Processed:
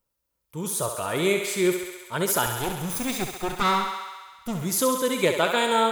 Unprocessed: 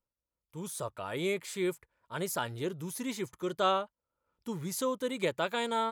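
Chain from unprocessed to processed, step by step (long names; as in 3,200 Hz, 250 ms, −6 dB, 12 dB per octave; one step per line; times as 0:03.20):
0:02.46–0:04.63: lower of the sound and its delayed copy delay 0.81 ms
high-shelf EQ 11,000 Hz +8.5 dB
feedback echo with a high-pass in the loop 67 ms, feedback 76%, high-pass 340 Hz, level −6.5 dB
level +8.5 dB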